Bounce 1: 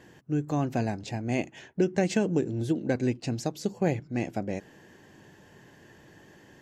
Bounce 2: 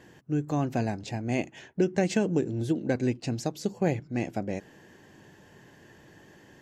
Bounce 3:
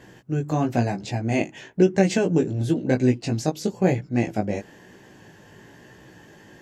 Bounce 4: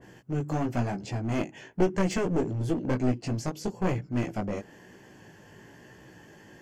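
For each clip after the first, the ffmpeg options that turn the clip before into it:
-af anull
-af "flanger=delay=15.5:depth=3.7:speed=1,volume=8.5dB"
-af "aeval=exprs='clip(val(0),-1,0.0562)':c=same,bandreject=f=3.8k:w=7.2,adynamicequalizer=threshold=0.00794:dfrequency=1700:dqfactor=0.7:tfrequency=1700:tqfactor=0.7:attack=5:release=100:ratio=0.375:range=2:mode=cutabove:tftype=highshelf,volume=-3dB"

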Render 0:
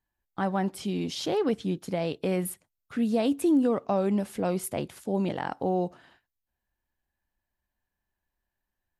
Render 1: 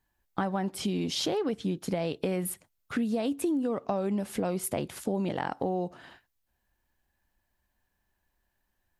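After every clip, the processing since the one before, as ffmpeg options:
-af "acompressor=threshold=-34dB:ratio=6,volume=7dB"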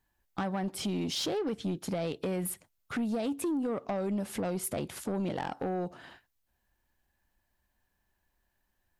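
-af "asoftclip=type=tanh:threshold=-26dB"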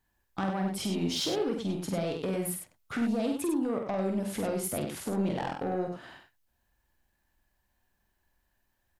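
-af "aecho=1:1:47|98:0.562|0.501"

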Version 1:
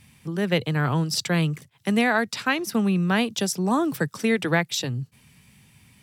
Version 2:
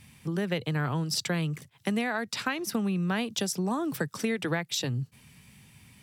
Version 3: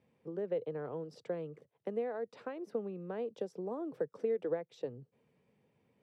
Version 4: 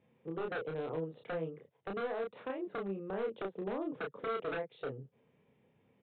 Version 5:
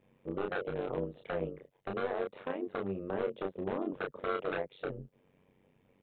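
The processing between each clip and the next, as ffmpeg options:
-af "acompressor=threshold=-26dB:ratio=6"
-af "bandpass=f=480:t=q:w=4.3:csg=0,volume=2dB"
-filter_complex "[0:a]aresample=8000,aeval=exprs='0.0211*(abs(mod(val(0)/0.0211+3,4)-2)-1)':c=same,aresample=44100,asplit=2[a][b];[b]adelay=31,volume=-3dB[c];[a][c]amix=inputs=2:normalize=0,volume=1dB"
-af "tremolo=f=94:d=0.857,volume=6dB"

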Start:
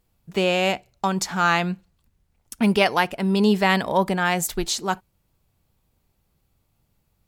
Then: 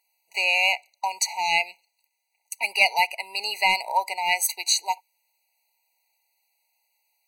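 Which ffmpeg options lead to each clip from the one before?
-af "highpass=f=950:w=0.5412,highpass=f=950:w=1.3066,acontrast=74,afftfilt=real='re*eq(mod(floor(b*sr/1024/970),2),0)':imag='im*eq(mod(floor(b*sr/1024/970),2),0)':win_size=1024:overlap=0.75"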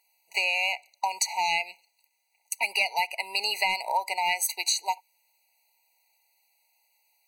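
-af "acompressor=threshold=-26dB:ratio=6,volume=3dB"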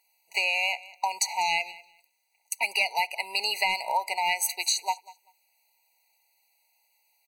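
-af "aecho=1:1:194|388:0.0944|0.017"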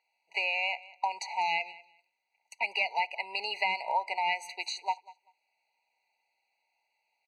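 -af "highpass=140,lowpass=3k,volume=-2.5dB"

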